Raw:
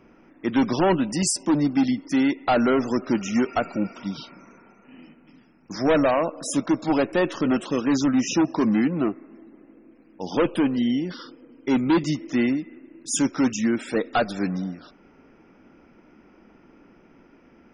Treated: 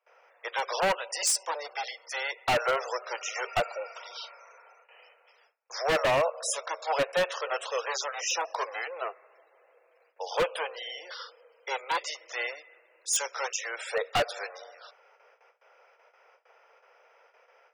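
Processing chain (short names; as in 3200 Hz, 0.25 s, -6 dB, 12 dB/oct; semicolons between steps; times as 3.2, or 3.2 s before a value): gate with hold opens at -44 dBFS; steep high-pass 470 Hz 72 dB/oct; wavefolder -18.5 dBFS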